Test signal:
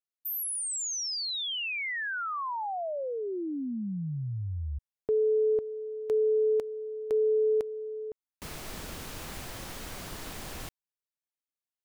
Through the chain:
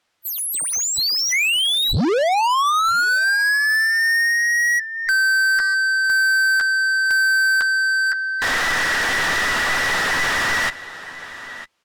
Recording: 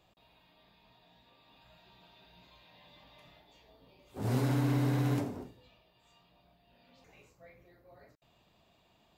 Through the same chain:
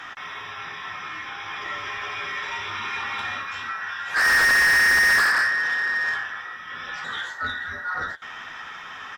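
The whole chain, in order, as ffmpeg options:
-filter_complex "[0:a]afftfilt=real='real(if(between(b,1,1012),(2*floor((b-1)/92)+1)*92-b,b),0)':imag='imag(if(between(b,1,1012),(2*floor((b-1)/92)+1)*92-b,b),0)*if(between(b,1,1012),-1,1)':win_size=2048:overlap=0.75,aemphasis=mode=reproduction:type=bsi,asplit=2[a][b];[b]aeval=exprs='0.188*sin(PI/2*2.51*val(0)/0.188)':c=same,volume=-8dB[c];[a][c]amix=inputs=2:normalize=0,asplit=2[d][e];[e]adelay=12,volume=-9dB[f];[d][f]amix=inputs=2:normalize=0,asplit=2[g][h];[h]aecho=0:1:956:0.0668[i];[g][i]amix=inputs=2:normalize=0,asplit=2[j][k];[k]highpass=f=720:p=1,volume=30dB,asoftclip=type=tanh:threshold=-12.5dB[l];[j][l]amix=inputs=2:normalize=0,lowpass=f=6.2k:p=1,volume=-6dB" -ar 48000 -c:a libvorbis -b:a 192k

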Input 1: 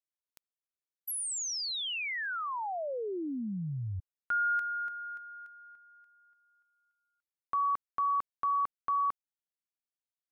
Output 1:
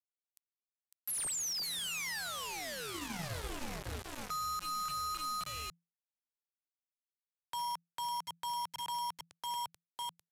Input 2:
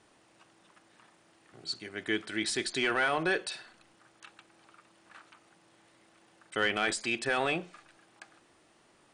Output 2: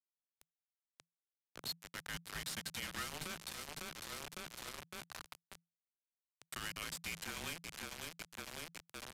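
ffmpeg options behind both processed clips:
-filter_complex "[0:a]lowshelf=f=62:g=-4,bandreject=f=60:t=h:w=6,bandreject=f=120:t=h:w=6,bandreject=f=180:t=h:w=6,bandreject=f=240:t=h:w=6,bandreject=f=300:t=h:w=6,bandreject=f=360:t=h:w=6,bandreject=f=420:t=h:w=6,bandreject=f=480:t=h:w=6,bandreject=f=540:t=h:w=6,asplit=2[a][b];[b]aecho=0:1:553|1106|1659|2212|2765:0.299|0.14|0.0659|0.031|0.0146[c];[a][c]amix=inputs=2:normalize=0,acrossover=split=380|1600[d][e][f];[e]acompressor=threshold=-47dB:ratio=6:attack=1.9:release=184:knee=2.83:detection=peak[g];[d][g][f]amix=inputs=3:normalize=0,asplit=2[h][i];[i]asoftclip=type=hard:threshold=-30.5dB,volume=-5.5dB[j];[h][j]amix=inputs=2:normalize=0,equalizer=f=120:w=1.2:g=-10,aeval=exprs='0.141*(cos(1*acos(clip(val(0)/0.141,-1,1)))-cos(1*PI/2))+0.00501*(cos(4*acos(clip(val(0)/0.141,-1,1)))-cos(4*PI/2))':c=same,acompressor=threshold=-38dB:ratio=12:attack=0.11:release=343:knee=1:detection=rms,acrusher=bits=6:mix=0:aa=0.000001,aresample=32000,aresample=44100,afreqshift=-170,volume=2dB"

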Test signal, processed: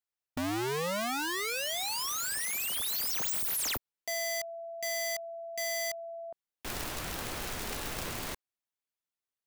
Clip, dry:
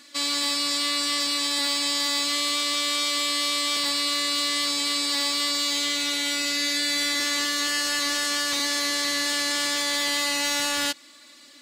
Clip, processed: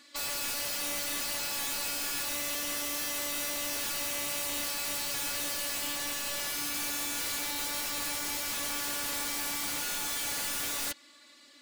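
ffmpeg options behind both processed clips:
-af "bass=f=250:g=-3,treble=f=4k:g=-3,aeval=exprs='(mod(15*val(0)+1,2)-1)/15':c=same,volume=-5.5dB"

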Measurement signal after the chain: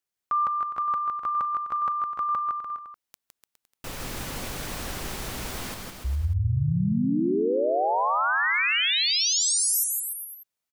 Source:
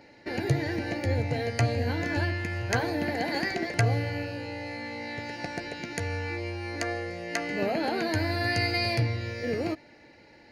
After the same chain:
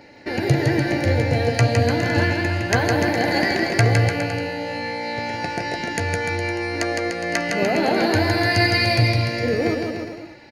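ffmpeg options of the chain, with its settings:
-af "aecho=1:1:160|296|411.6|509.9|593.4:0.631|0.398|0.251|0.158|0.1,volume=7dB"

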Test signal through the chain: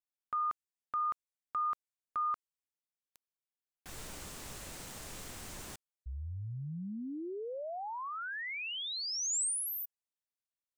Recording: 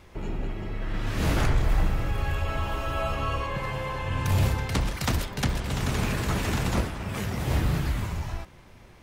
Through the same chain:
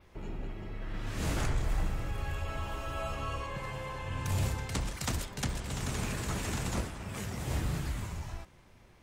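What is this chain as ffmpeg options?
-af "adynamicequalizer=threshold=0.002:dfrequency=7800:dqfactor=1.3:tfrequency=7800:tqfactor=1.3:attack=5:release=100:ratio=0.375:range=4:mode=boostabove:tftype=bell,volume=-8dB"

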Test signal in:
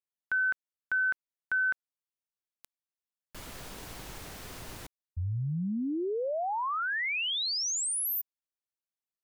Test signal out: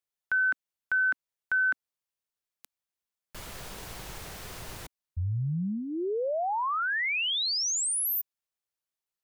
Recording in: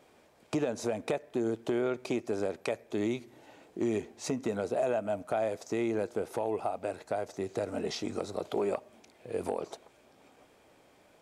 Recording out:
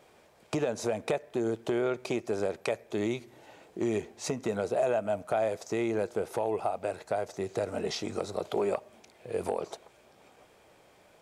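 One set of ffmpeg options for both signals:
-af "equalizer=f=270:w=3.4:g=-7,volume=2.5dB"

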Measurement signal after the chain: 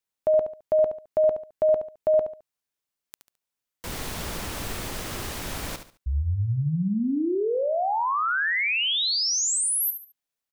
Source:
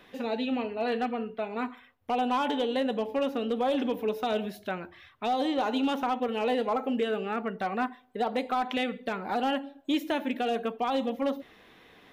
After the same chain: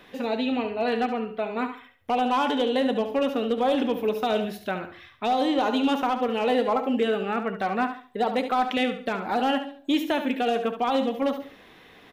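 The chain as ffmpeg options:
-af "aecho=1:1:71|142|213:0.335|0.1|0.0301,volume=4dB"

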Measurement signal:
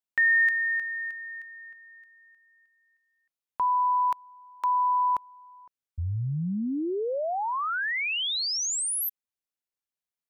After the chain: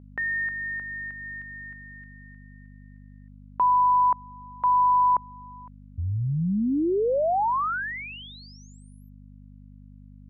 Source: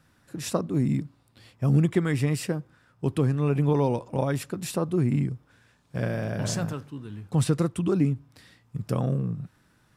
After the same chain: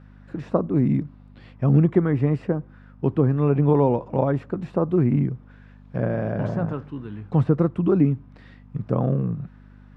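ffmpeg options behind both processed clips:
-filter_complex "[0:a]acrossover=split=1300[a][b];[b]acompressor=threshold=-42dB:ratio=10:attack=0.12:release=274:detection=rms[c];[a][c]amix=inputs=2:normalize=0,aeval=exprs='val(0)+0.00447*(sin(2*PI*50*n/s)+sin(2*PI*2*50*n/s)/2+sin(2*PI*3*50*n/s)/3+sin(2*PI*4*50*n/s)/4+sin(2*PI*5*50*n/s)/5)':c=same,lowpass=2.3k,lowshelf=f=85:g=-9.5,volume=6dB"

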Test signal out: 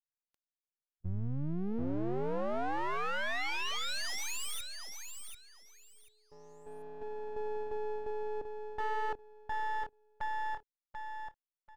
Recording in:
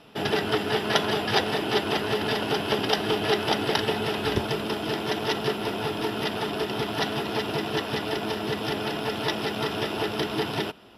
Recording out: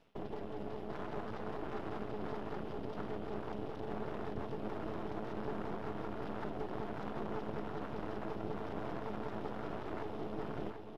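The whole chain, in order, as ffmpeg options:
-filter_complex "[0:a]areverse,acompressor=threshold=-33dB:ratio=20,areverse,alimiter=level_in=7.5dB:limit=-24dB:level=0:latency=1:release=75,volume=-7.5dB,afwtdn=0.0112,asplit=2[a][b];[b]aecho=0:1:738|1476|2214:0.473|0.0994|0.0209[c];[a][c]amix=inputs=2:normalize=0,aeval=exprs='max(val(0),0)':c=same,highshelf=f=4.9k:g=-8,volume=4.5dB"

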